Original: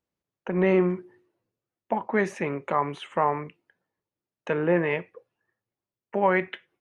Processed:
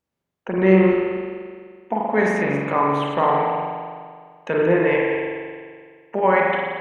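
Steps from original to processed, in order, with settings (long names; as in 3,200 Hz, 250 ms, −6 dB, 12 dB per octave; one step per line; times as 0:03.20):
feedback delay that plays each chunk backwards 117 ms, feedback 43%, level −9 dB
0:00.92–0:02.03: notch comb filter 560 Hz
spring reverb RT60 1.9 s, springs 42 ms, chirp 20 ms, DRR −2 dB
level +2.5 dB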